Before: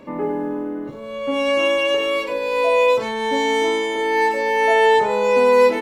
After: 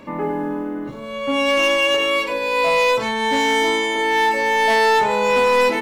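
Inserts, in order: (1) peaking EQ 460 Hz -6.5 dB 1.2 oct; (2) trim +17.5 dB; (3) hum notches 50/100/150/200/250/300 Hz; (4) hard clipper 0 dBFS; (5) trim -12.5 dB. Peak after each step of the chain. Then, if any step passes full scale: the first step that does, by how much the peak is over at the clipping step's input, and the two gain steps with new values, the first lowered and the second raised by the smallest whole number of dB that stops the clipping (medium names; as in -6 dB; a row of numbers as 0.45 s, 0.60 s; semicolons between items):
-7.5 dBFS, +10.0 dBFS, +10.0 dBFS, 0.0 dBFS, -12.5 dBFS; step 2, 10.0 dB; step 2 +7.5 dB, step 5 -2.5 dB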